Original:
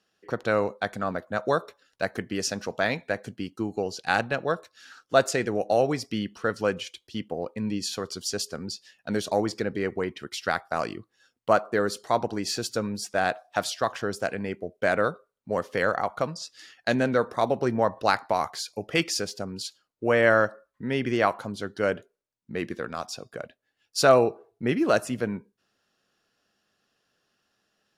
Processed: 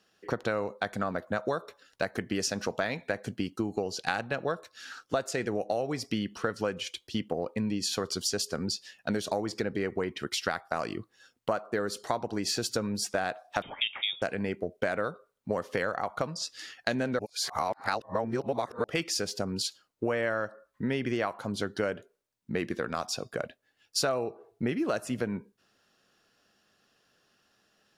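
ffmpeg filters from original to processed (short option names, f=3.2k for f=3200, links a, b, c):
-filter_complex "[0:a]asettb=1/sr,asplit=3[a][b][c];[a]atrim=end=13.624[d];[b]atrim=start=13.62:end=14.22,asetpts=PTS-STARTPTS,afade=t=in:d=0.004:c=qsin,afade=t=out:st=0.596:d=0.004:c=qsin,lowpass=f=3.2k:t=q:w=0.5098,lowpass=f=3.2k:t=q:w=0.6013,lowpass=f=3.2k:t=q:w=0.9,lowpass=f=3.2k:t=q:w=2.563,afreqshift=-3800[e];[c]atrim=start=14.216[f];[d][e]acrossfade=d=0.004:c1=hsin:c2=qsin[g];[g][f]acrossfade=d=0.004:c1=qsin:c2=hsin,asplit=3[h][i][j];[h]atrim=end=17.192[k];[i]atrim=start=17.188:end=18.842,asetpts=PTS-STARTPTS,areverse[l];[j]atrim=start=18.838[m];[k][l]acrossfade=d=0.004:c1=hsin:c2=hsin[n];[n][m]acrossfade=d=0.004:c1=hsin:c2=hsin,acompressor=threshold=-31dB:ratio=8,volume=4.5dB"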